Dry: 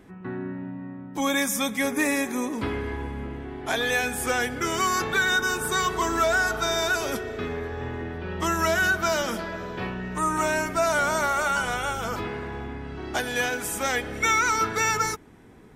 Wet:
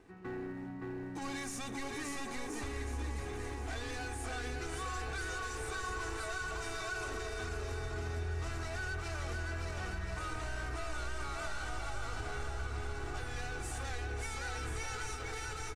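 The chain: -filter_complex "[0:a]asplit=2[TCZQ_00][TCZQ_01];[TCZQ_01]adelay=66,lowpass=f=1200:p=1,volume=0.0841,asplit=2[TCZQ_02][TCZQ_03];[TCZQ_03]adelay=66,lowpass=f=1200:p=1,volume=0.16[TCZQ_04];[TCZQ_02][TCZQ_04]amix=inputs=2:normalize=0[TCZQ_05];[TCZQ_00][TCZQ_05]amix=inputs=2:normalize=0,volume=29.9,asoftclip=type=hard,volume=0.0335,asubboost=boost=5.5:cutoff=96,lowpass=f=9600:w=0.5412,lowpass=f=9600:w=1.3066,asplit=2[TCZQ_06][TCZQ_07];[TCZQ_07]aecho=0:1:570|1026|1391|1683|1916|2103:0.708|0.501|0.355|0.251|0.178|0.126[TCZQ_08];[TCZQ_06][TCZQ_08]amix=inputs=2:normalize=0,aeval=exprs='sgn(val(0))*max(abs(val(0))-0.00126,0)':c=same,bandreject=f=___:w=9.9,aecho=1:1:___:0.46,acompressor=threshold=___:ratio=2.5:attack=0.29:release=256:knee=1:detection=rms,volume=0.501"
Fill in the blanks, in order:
3300, 2.6, 0.0355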